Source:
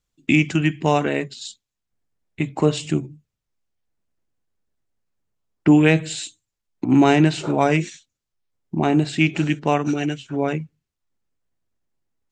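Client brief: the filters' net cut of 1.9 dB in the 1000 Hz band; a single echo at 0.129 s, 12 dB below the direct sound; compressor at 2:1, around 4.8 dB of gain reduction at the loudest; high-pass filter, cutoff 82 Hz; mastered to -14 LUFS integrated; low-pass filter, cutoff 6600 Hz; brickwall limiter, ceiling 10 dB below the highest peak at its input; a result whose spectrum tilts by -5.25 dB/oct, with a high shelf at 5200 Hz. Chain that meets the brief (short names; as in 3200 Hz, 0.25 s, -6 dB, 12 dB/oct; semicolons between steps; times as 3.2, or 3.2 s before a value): HPF 82 Hz; LPF 6600 Hz; bell 1000 Hz -3 dB; high shelf 5200 Hz +5 dB; compressor 2:1, threshold -18 dBFS; limiter -17 dBFS; echo 0.129 s -12 dB; gain +14 dB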